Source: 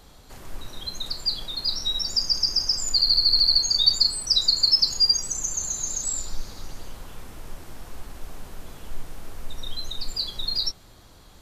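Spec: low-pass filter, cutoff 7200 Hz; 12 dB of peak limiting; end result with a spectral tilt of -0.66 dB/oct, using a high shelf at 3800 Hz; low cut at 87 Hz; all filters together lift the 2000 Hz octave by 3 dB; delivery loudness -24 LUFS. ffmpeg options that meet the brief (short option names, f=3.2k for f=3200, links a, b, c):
-af "highpass=87,lowpass=7.2k,equalizer=f=2k:t=o:g=5.5,highshelf=f=3.8k:g=-6.5,volume=5.5dB,alimiter=limit=-16dB:level=0:latency=1"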